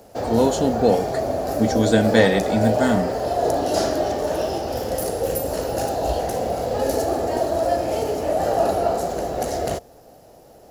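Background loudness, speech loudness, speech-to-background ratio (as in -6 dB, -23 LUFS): -23.5 LUFS, -20.5 LUFS, 3.0 dB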